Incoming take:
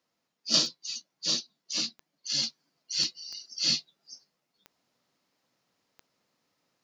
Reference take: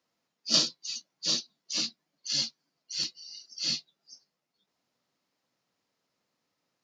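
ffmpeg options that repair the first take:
-af "adeclick=t=4,asetnsamples=n=441:p=0,asendcmd='2.43 volume volume -4dB',volume=1"

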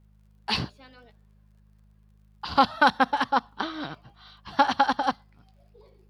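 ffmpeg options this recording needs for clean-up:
-af "adeclick=t=4,bandreject=f=51.9:t=h:w=4,bandreject=f=103.8:t=h:w=4,bandreject=f=155.7:t=h:w=4,bandreject=f=207.6:t=h:w=4"

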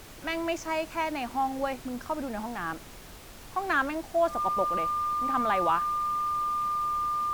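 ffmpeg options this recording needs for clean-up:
-af "bandreject=f=1200:w=30,afftdn=nr=29:nf=-46"

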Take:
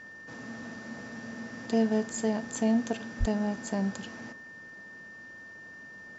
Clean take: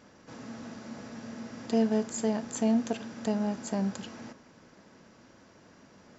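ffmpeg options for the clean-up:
-filter_complex "[0:a]adeclick=t=4,bandreject=f=1800:w=30,asplit=3[s0][s1][s2];[s0]afade=t=out:st=3.19:d=0.02[s3];[s1]highpass=f=140:w=0.5412,highpass=f=140:w=1.3066,afade=t=in:st=3.19:d=0.02,afade=t=out:st=3.31:d=0.02[s4];[s2]afade=t=in:st=3.31:d=0.02[s5];[s3][s4][s5]amix=inputs=3:normalize=0"

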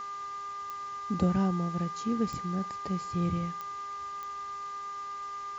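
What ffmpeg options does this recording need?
-af "adeclick=t=4,bandreject=f=402.8:t=h:w=4,bandreject=f=805.6:t=h:w=4,bandreject=f=1208.4:t=h:w=4,bandreject=f=1611.2:t=h:w=4,bandreject=f=2014:t=h:w=4,bandreject=f=1200:w=30,afwtdn=0.0025"

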